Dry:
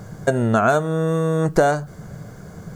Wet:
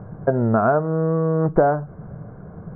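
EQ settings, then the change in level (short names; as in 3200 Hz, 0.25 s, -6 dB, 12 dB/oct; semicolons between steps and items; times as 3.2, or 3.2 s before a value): LPF 1300 Hz 24 dB/oct; 0.0 dB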